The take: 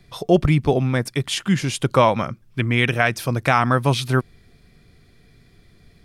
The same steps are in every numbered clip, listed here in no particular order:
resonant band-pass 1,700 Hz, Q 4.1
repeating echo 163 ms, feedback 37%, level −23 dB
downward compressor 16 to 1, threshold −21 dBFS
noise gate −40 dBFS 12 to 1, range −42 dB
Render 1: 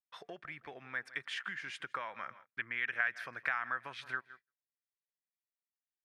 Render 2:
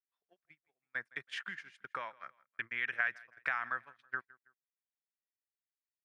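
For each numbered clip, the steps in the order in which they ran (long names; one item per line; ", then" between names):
repeating echo, then downward compressor, then noise gate, then resonant band-pass
downward compressor, then resonant band-pass, then noise gate, then repeating echo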